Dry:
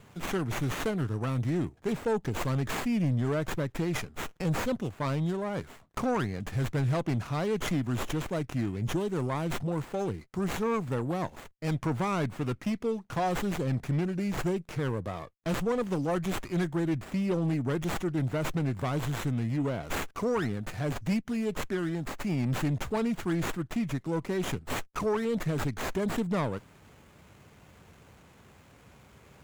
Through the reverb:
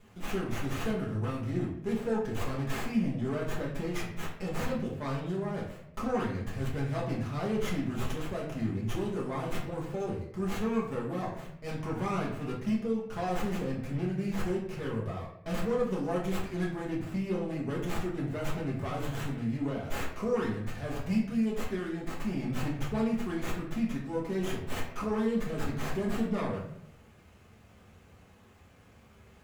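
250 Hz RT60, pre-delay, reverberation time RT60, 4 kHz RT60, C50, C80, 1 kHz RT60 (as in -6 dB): 0.90 s, 5 ms, 0.70 s, 0.45 s, 5.0 dB, 8.0 dB, 0.60 s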